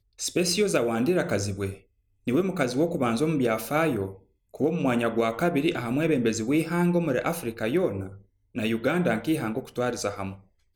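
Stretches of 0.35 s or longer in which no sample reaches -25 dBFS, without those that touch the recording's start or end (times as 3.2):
1.7–2.28
4.06–4.6
8–8.57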